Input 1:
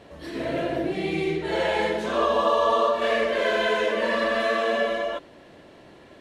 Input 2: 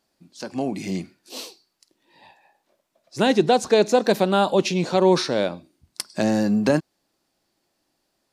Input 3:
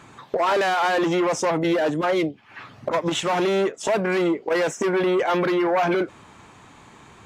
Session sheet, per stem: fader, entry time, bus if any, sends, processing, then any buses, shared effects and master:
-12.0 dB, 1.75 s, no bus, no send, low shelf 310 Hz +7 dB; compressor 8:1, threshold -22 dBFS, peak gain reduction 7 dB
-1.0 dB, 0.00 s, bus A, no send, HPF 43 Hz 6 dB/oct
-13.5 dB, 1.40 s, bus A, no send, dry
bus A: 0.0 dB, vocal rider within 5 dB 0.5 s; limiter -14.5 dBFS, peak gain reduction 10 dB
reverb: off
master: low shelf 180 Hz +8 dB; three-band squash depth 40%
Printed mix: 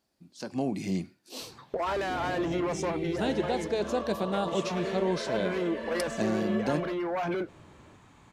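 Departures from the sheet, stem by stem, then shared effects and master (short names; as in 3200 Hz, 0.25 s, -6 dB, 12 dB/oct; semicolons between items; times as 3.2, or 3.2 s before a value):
stem 2 -1.0 dB -> -11.0 dB; master: missing three-band squash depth 40%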